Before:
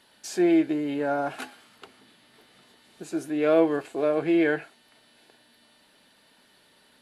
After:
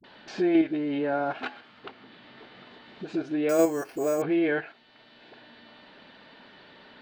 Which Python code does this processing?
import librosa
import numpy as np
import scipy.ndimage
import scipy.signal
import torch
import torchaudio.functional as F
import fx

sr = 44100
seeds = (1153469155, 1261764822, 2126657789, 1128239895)

p1 = scipy.signal.sosfilt(scipy.signal.butter(4, 4200.0, 'lowpass', fs=sr, output='sos'), x)
p2 = fx.dispersion(p1, sr, late='highs', ms=41.0, hz=360.0)
p3 = fx.level_steps(p2, sr, step_db=18)
p4 = p2 + F.gain(torch.from_numpy(p3), 0.0).numpy()
p5 = fx.resample_bad(p4, sr, factor=6, down='filtered', up='hold', at=(3.49, 4.22))
p6 = fx.band_squash(p5, sr, depth_pct=40)
y = F.gain(torch.from_numpy(p6), -3.5).numpy()